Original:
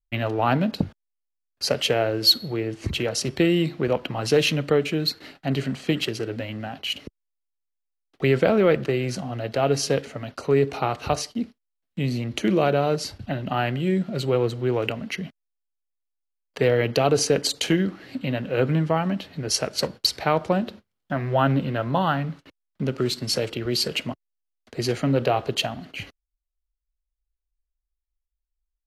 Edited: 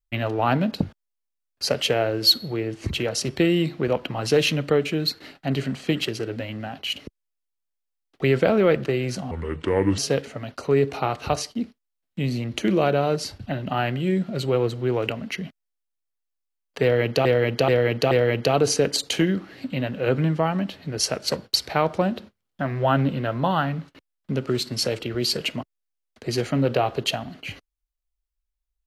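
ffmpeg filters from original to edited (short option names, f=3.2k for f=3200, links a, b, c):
-filter_complex "[0:a]asplit=6[a][b][c][d][e][f];[a]atrim=end=9.314[g];[b]atrim=start=9.31:end=9.78,asetpts=PTS-STARTPTS,asetrate=30870,aresample=44100,atrim=end_sample=29610,asetpts=PTS-STARTPTS[h];[c]atrim=start=9.776:end=17.052[i];[d]atrim=start=16.618:end=17.052[j];[e]atrim=start=16.618:end=17.052[k];[f]atrim=start=16.618[l];[g][h]acrossfade=d=0.004:c1=hsin:c2=hsin[m];[m][i]acrossfade=d=0.004:c1=hsin:c2=hsin[n];[n][j]acrossfade=d=0.004:c1=hsin:c2=hsin[o];[o][k]acrossfade=d=0.004:c1=hsin:c2=hsin[p];[p][l]acrossfade=d=0.004:c1=hsin:c2=hsin"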